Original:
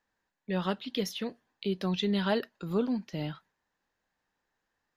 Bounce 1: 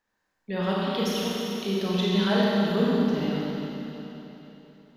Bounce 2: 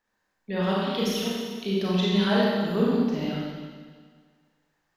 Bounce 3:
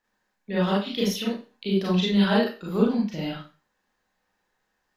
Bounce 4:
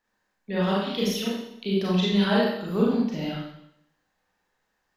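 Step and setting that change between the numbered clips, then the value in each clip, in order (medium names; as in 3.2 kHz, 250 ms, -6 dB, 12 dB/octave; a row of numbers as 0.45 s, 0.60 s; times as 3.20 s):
Schroeder reverb, RT60: 3.5 s, 1.7 s, 0.33 s, 0.76 s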